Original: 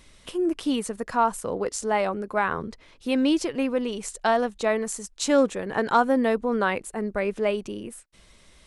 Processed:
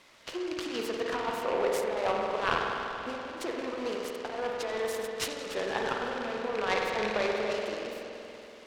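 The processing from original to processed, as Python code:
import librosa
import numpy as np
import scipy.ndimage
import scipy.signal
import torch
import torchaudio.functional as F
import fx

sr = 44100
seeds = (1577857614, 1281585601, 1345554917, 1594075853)

y = fx.rattle_buzz(x, sr, strikes_db=-30.0, level_db=-19.0)
y = fx.over_compress(y, sr, threshold_db=-26.0, ratio=-0.5)
y = fx.backlash(y, sr, play_db=-28.0, at=(1.87, 4.32))
y = fx.bandpass_edges(y, sr, low_hz=460.0, high_hz=4700.0)
y = fx.rev_spring(y, sr, rt60_s=3.2, pass_ms=(47,), chirp_ms=50, drr_db=-1.5)
y = fx.noise_mod_delay(y, sr, seeds[0], noise_hz=1400.0, depth_ms=0.048)
y = F.gain(torch.from_numpy(y), -3.0).numpy()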